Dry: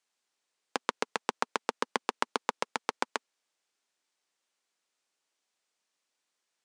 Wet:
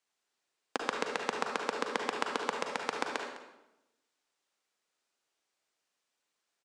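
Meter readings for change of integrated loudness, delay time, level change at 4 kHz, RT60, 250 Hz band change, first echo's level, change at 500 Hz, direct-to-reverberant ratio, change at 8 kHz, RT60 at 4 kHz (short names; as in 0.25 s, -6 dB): -0.5 dB, 0.206 s, -0.5 dB, 0.95 s, +0.5 dB, -15.5 dB, +1.5 dB, 1.5 dB, -2.0 dB, 0.75 s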